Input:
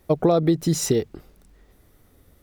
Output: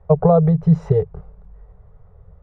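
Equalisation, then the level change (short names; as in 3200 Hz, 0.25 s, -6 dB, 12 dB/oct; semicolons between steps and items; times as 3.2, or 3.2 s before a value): elliptic band-stop 180–420 Hz; synth low-pass 990 Hz, resonance Q 1.5; low shelf 290 Hz +11 dB; +1.5 dB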